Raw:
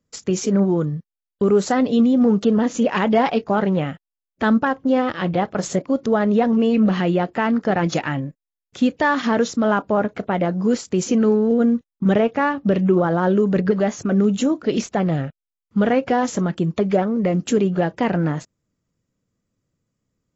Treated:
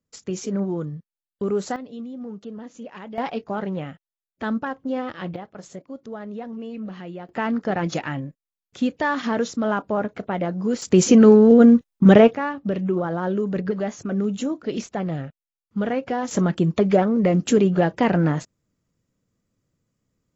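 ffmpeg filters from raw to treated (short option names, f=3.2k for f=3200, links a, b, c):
-af "asetnsamples=n=441:p=0,asendcmd='1.76 volume volume -19dB;3.18 volume volume -8.5dB;5.36 volume volume -16.5dB;7.29 volume volume -4.5dB;10.82 volume volume 5.5dB;12.35 volume volume -6.5dB;16.31 volume volume 1dB',volume=-7.5dB"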